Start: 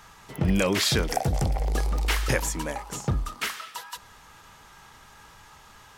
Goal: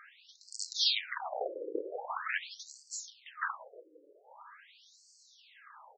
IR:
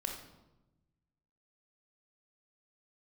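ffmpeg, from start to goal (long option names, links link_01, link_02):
-filter_complex "[0:a]highshelf=frequency=3000:gain=-4,bandreject=frequency=60:width_type=h:width=6,bandreject=frequency=120:width_type=h:width=6,bandreject=frequency=180:width_type=h:width=6,aeval=exprs='(mod(4.73*val(0)+1,2)-1)/4.73':channel_layout=same,asplit=2[link_01][link_02];[link_02]adelay=655,lowpass=frequency=1500:poles=1,volume=-21dB,asplit=2[link_03][link_04];[link_04]adelay=655,lowpass=frequency=1500:poles=1,volume=0.44,asplit=2[link_05][link_06];[link_06]adelay=655,lowpass=frequency=1500:poles=1,volume=0.44[link_07];[link_01][link_03][link_05][link_07]amix=inputs=4:normalize=0,volume=21.5dB,asoftclip=hard,volume=-21.5dB,asplit=2[link_08][link_09];[1:a]atrim=start_sample=2205[link_10];[link_09][link_10]afir=irnorm=-1:irlink=0,volume=-10dB[link_11];[link_08][link_11]amix=inputs=2:normalize=0,afftfilt=real='re*between(b*sr/1024,390*pow(6100/390,0.5+0.5*sin(2*PI*0.44*pts/sr))/1.41,390*pow(6100/390,0.5+0.5*sin(2*PI*0.44*pts/sr))*1.41)':imag='im*between(b*sr/1024,390*pow(6100/390,0.5+0.5*sin(2*PI*0.44*pts/sr))/1.41,390*pow(6100/390,0.5+0.5*sin(2*PI*0.44*pts/sr))*1.41)':win_size=1024:overlap=0.75"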